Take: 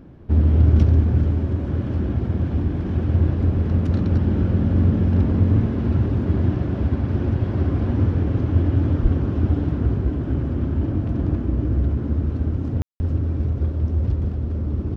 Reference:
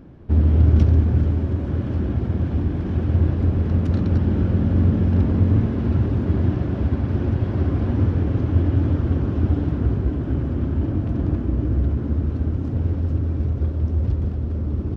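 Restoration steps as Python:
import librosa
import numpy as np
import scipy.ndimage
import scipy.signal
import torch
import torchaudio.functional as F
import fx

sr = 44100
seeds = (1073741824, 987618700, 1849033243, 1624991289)

y = fx.fix_deplosive(x, sr, at_s=(9.02,))
y = fx.fix_ambience(y, sr, seeds[0], print_start_s=0.0, print_end_s=0.5, start_s=12.82, end_s=13.0)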